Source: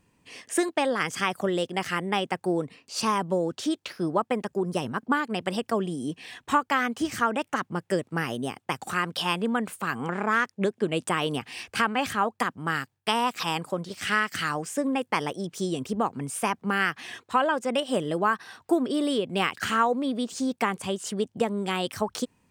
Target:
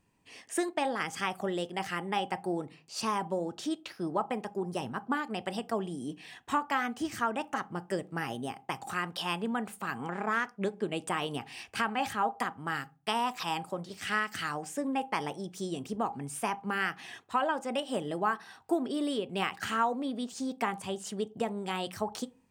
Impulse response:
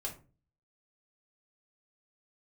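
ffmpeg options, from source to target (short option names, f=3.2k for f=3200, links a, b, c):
-filter_complex "[0:a]asplit=2[a][b];[b]equalizer=f=810:t=o:w=0.25:g=15[c];[1:a]atrim=start_sample=2205,asetrate=52920,aresample=44100[d];[c][d]afir=irnorm=-1:irlink=0,volume=-10.5dB[e];[a][e]amix=inputs=2:normalize=0,volume=-7.5dB"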